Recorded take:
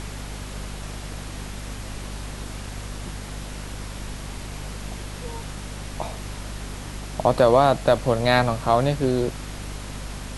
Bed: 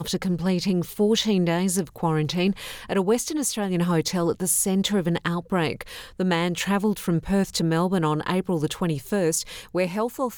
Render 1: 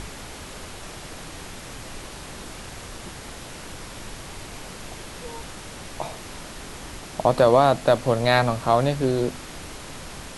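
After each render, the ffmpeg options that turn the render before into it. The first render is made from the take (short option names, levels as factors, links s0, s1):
-af "bandreject=f=50:t=h:w=4,bandreject=f=100:t=h:w=4,bandreject=f=150:t=h:w=4,bandreject=f=200:t=h:w=4,bandreject=f=250:t=h:w=4"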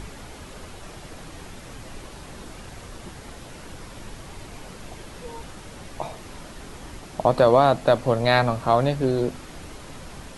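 -af "afftdn=nr=6:nf=-39"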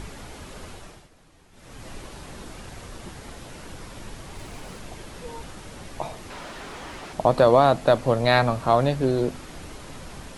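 -filter_complex "[0:a]asettb=1/sr,asplit=3[s0][s1][s2];[s0]atrim=end=4.354[s3];[s1]atrim=start=4.35:end=4.79,asetpts=PTS-STARTPTS,afade=t=in:d=0.004:c=qsin,afade=t=out:st=0.436:d=0.004:c=qsin,aeval=exprs='val(0)+0.5*0.00316*sgn(val(0))':c=same[s4];[s2]atrim=start=4.786[s5];[s3][s4]acrossfade=d=0.004:c1=hsin:c2=qsin[s6];[s6][s5]acrossfade=d=0.004:c1=qsin:c2=hsin,asettb=1/sr,asplit=3[s7][s8][s9];[s7]atrim=end=6.304[s10];[s8]atrim=start=6.3:end=7.13,asetpts=PTS-STARTPTS,afade=t=in:d=0.004:c=qsin,afade=t=out:st=0.826:d=0.004:c=qsin,asplit=2[s11][s12];[s12]highpass=f=720:p=1,volume=6.31,asoftclip=type=tanh:threshold=0.0422[s13];[s11][s13]amix=inputs=2:normalize=0,lowpass=f=2700:p=1,volume=0.501[s14];[s9]atrim=start=7.126[s15];[s10][s14]acrossfade=d=0.004:c1=hsin:c2=qsin[s16];[s16][s15]acrossfade=d=0.004:c1=qsin:c2=hsin,asplit=3[s17][s18][s19];[s17]atrim=end=1.09,asetpts=PTS-STARTPTS,afade=t=out:st=0.72:d=0.37:silence=0.158489[s20];[s18]atrim=start=1.09:end=1.51,asetpts=PTS-STARTPTS,volume=0.158[s21];[s19]atrim=start=1.51,asetpts=PTS-STARTPTS,afade=t=in:d=0.37:silence=0.158489[s22];[s20][s21][s22]concat=n=3:v=0:a=1"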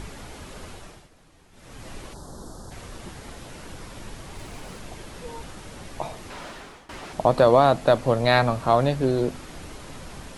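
-filter_complex "[0:a]asplit=3[s0][s1][s2];[s0]afade=t=out:st=2.13:d=0.02[s3];[s1]asuperstop=centerf=2400:order=4:qfactor=0.77,afade=t=in:st=2.13:d=0.02,afade=t=out:st=2.7:d=0.02[s4];[s2]afade=t=in:st=2.7:d=0.02[s5];[s3][s4][s5]amix=inputs=3:normalize=0,asplit=2[s6][s7];[s6]atrim=end=6.89,asetpts=PTS-STARTPTS,afade=t=out:st=6.47:d=0.42:silence=0.1[s8];[s7]atrim=start=6.89,asetpts=PTS-STARTPTS,afade=t=in:d=0.004:c=hsin:silence=0.1[s9];[s8][s9]concat=n=2:v=0:a=1"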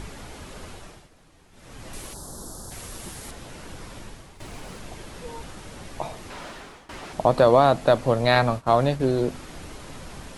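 -filter_complex "[0:a]asettb=1/sr,asplit=3[s0][s1][s2];[s0]atrim=end=1.934[s3];[s1]atrim=start=1.93:end=3.31,asetpts=PTS-STARTPTS,afade=t=in:d=0.004:c=qsin,afade=t=out:st=1.376:d=0.004:c=qsin,aemphasis=mode=production:type=50fm[s4];[s2]atrim=start=3.306[s5];[s3][s4]acrossfade=d=0.004:c1=hsin:c2=qsin[s6];[s6][s5]acrossfade=d=0.004:c1=qsin:c2=hsin,asettb=1/sr,asplit=3[s7][s8][s9];[s7]atrim=end=8.354[s10];[s8]atrim=start=8.35:end=9,asetpts=PTS-STARTPTS,afade=t=in:d=0.004:c=qsin,afade=t=out:st=0.646:d=0.004:c=qsin,agate=range=0.0224:threshold=0.0501:ratio=3:release=100:detection=peak[s11];[s9]atrim=start=8.996[s12];[s10][s11]acrossfade=d=0.004:c1=hsin:c2=qsin[s13];[s13][s12]acrossfade=d=0.004:c1=qsin:c2=hsin,asplit=2[s14][s15];[s14]atrim=end=4.4,asetpts=PTS-STARTPTS,afade=t=out:st=3.95:d=0.45:silence=0.251189[s16];[s15]atrim=start=4.4,asetpts=PTS-STARTPTS,afade=t=in:d=0.004:c=hsin:silence=0.251189[s17];[s16][s17]concat=n=2:v=0:a=1"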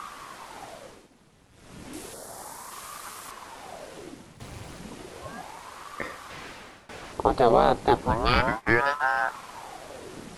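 -af "aeval=exprs='val(0)*sin(2*PI*640*n/s+640*0.85/0.33*sin(2*PI*0.33*n/s))':c=same"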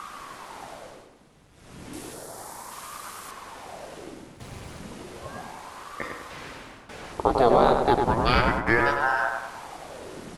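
-filter_complex "[0:a]asplit=2[s0][s1];[s1]adelay=99,lowpass=f=2200:p=1,volume=0.631,asplit=2[s2][s3];[s3]adelay=99,lowpass=f=2200:p=1,volume=0.5,asplit=2[s4][s5];[s5]adelay=99,lowpass=f=2200:p=1,volume=0.5,asplit=2[s6][s7];[s7]adelay=99,lowpass=f=2200:p=1,volume=0.5,asplit=2[s8][s9];[s9]adelay=99,lowpass=f=2200:p=1,volume=0.5,asplit=2[s10][s11];[s11]adelay=99,lowpass=f=2200:p=1,volume=0.5[s12];[s0][s2][s4][s6][s8][s10][s12]amix=inputs=7:normalize=0"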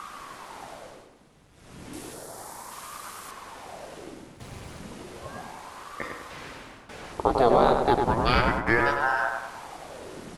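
-af "volume=0.891"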